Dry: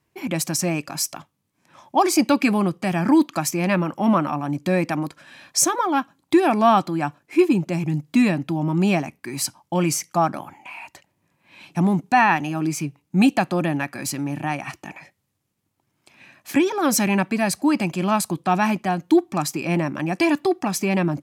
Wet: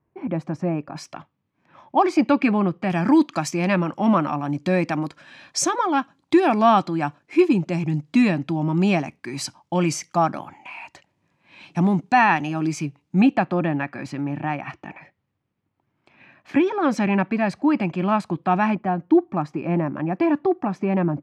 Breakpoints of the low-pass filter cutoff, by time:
1,100 Hz
from 0:00.96 2,600 Hz
from 0:02.90 5,800 Hz
from 0:13.21 2,400 Hz
from 0:18.75 1,400 Hz

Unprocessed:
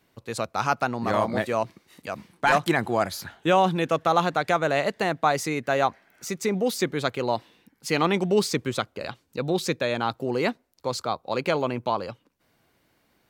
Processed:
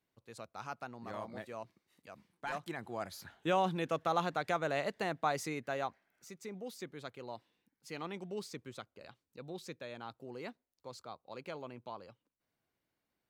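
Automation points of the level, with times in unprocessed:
0:02.76 −19.5 dB
0:03.42 −11 dB
0:05.47 −11 dB
0:06.32 −20 dB

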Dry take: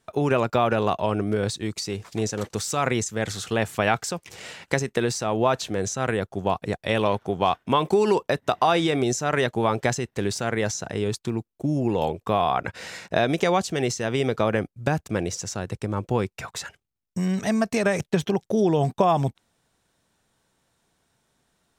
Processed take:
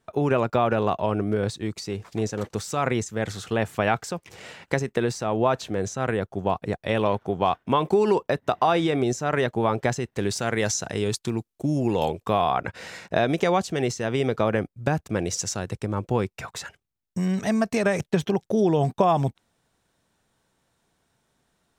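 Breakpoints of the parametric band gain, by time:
parametric band 8,700 Hz 3 octaves
0:09.85 −6.5 dB
0:10.62 +4.5 dB
0:12.08 +4.5 dB
0:12.65 −4 dB
0:15.15 −4 dB
0:15.40 +5.5 dB
0:15.89 −2.5 dB

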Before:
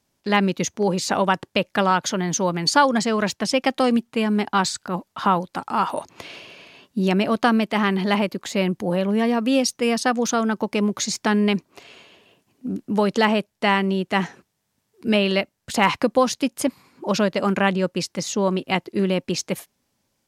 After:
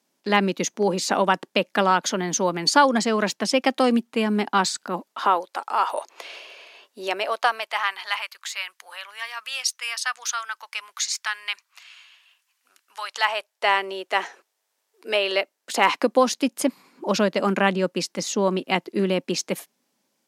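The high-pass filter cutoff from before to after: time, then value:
high-pass filter 24 dB per octave
0:04.88 200 Hz
0:05.50 440 Hz
0:07.04 440 Hz
0:08.29 1,200 Hz
0:12.96 1,200 Hz
0:13.70 440 Hz
0:15.19 440 Hz
0:16.45 190 Hz

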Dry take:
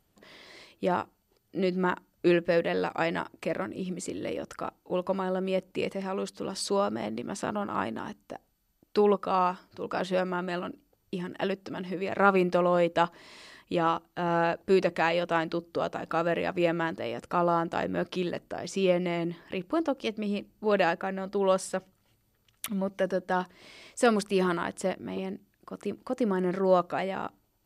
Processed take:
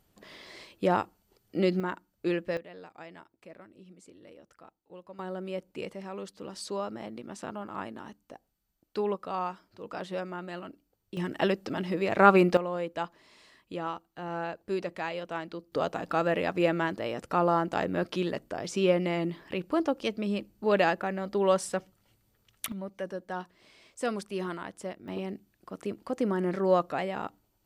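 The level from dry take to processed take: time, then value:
+2 dB
from 0:01.80 −6 dB
from 0:02.57 −18.5 dB
from 0:05.19 −7 dB
from 0:11.17 +3.5 dB
from 0:12.57 −8.5 dB
from 0:15.72 +0.5 dB
from 0:22.72 −8 dB
from 0:25.08 −1 dB

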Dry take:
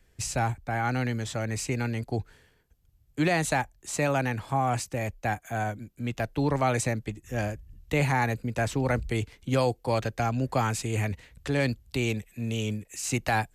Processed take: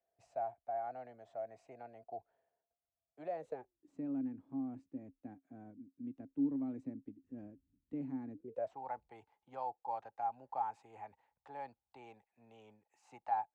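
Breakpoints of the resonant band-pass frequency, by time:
resonant band-pass, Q 13
0:03.23 680 Hz
0:03.93 270 Hz
0:08.33 270 Hz
0:08.77 840 Hz

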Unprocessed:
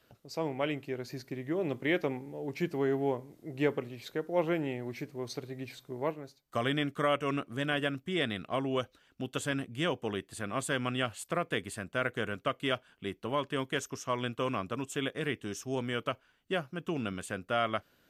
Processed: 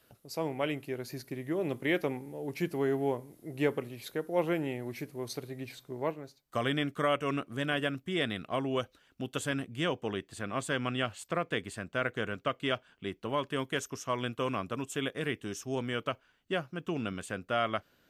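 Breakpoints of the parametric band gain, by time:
parametric band 11,000 Hz 0.51 octaves
0:05.39 +13.5 dB
0:05.89 +2 dB
0:09.51 +2 dB
0:10.21 −9.5 dB
0:13.05 −9.5 dB
0:13.50 +2.5 dB
0:15.39 +2.5 dB
0:16.03 −4.5 dB

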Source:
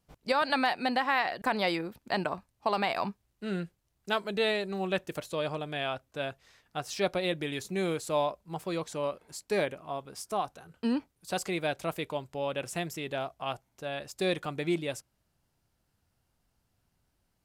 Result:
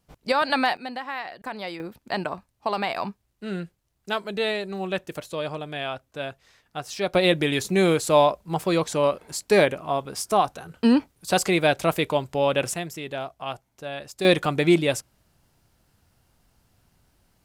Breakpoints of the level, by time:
+5 dB
from 0:00.77 −5 dB
from 0:01.80 +2.5 dB
from 0:07.14 +11 dB
from 0:12.74 +2.5 dB
from 0:14.25 +11.5 dB

